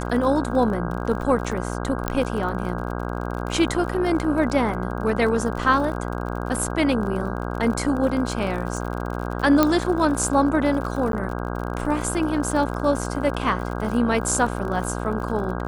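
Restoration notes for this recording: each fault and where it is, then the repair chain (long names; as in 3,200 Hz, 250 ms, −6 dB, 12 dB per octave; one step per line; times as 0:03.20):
mains buzz 60 Hz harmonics 27 −28 dBFS
surface crackle 43 per second −30 dBFS
0:02.08: click −8 dBFS
0:09.63: click −4 dBFS
0:11.12–0:11.13: drop-out 12 ms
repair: click removal
hum removal 60 Hz, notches 27
repair the gap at 0:11.12, 12 ms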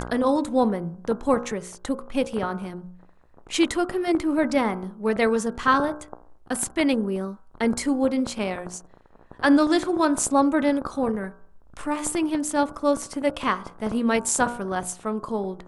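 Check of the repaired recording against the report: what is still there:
0:09.63: click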